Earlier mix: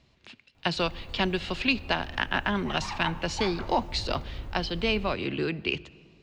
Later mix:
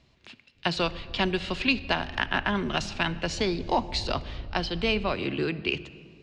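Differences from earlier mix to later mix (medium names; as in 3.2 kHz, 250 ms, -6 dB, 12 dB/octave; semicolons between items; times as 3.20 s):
speech: send +6.0 dB; background: add inverse Chebyshev low-pass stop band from 3 kHz, stop band 80 dB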